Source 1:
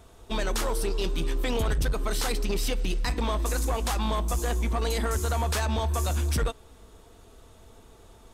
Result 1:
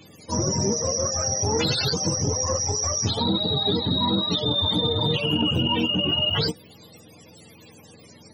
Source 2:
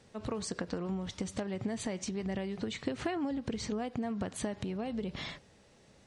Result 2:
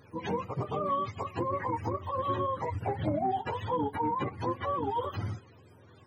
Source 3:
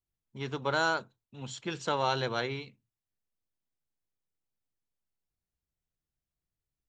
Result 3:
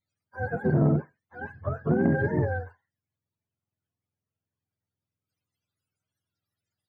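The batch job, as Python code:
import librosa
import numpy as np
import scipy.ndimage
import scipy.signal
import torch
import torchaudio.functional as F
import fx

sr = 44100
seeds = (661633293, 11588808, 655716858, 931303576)

y = fx.octave_mirror(x, sr, pivot_hz=460.0)
y = fx.transformer_sat(y, sr, knee_hz=290.0)
y = y * 10.0 ** (7.5 / 20.0)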